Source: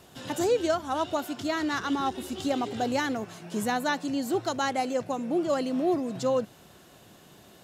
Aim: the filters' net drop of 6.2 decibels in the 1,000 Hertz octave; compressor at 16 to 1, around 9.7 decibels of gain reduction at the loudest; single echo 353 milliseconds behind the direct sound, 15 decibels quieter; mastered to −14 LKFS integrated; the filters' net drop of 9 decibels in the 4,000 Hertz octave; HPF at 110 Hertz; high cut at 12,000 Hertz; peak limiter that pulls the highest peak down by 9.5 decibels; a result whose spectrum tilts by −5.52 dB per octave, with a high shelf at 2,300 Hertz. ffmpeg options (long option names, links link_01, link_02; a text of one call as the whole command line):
ffmpeg -i in.wav -af "highpass=110,lowpass=12000,equalizer=frequency=1000:width_type=o:gain=-7.5,highshelf=frequency=2300:gain=-5.5,equalizer=frequency=4000:width_type=o:gain=-6,acompressor=threshold=-32dB:ratio=16,alimiter=level_in=8.5dB:limit=-24dB:level=0:latency=1,volume=-8.5dB,aecho=1:1:353:0.178,volume=26.5dB" out.wav